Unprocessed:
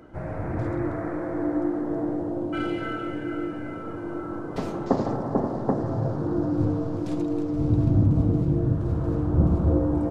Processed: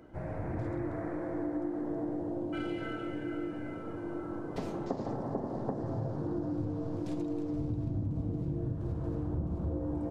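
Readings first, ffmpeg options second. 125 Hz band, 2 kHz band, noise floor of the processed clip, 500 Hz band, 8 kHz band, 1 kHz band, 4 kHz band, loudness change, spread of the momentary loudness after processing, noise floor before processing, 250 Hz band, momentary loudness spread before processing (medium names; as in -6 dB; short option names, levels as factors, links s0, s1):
-11.5 dB, -8.5 dB, -40 dBFS, -9.0 dB, no reading, -9.5 dB, -7.0 dB, -10.0 dB, 4 LU, -34 dBFS, -9.5 dB, 11 LU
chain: -af "acompressor=threshold=0.0562:ratio=6,equalizer=f=1300:w=3.5:g=-4.5,volume=0.531"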